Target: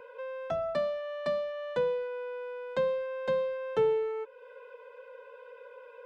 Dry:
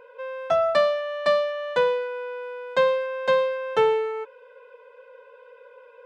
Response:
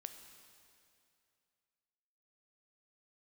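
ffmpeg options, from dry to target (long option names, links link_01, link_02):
-filter_complex "[0:a]acrossover=split=410[link_01][link_02];[link_02]acompressor=threshold=-47dB:ratio=2[link_03];[link_01][link_03]amix=inputs=2:normalize=0"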